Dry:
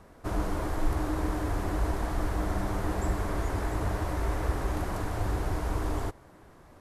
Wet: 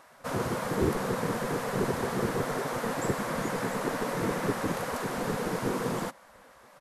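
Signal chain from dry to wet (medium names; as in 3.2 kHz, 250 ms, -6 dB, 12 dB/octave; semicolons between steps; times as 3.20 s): resonant low shelf 520 Hz +7 dB, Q 3; spectral gate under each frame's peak -15 dB weak; resampled via 32 kHz; trim +5.5 dB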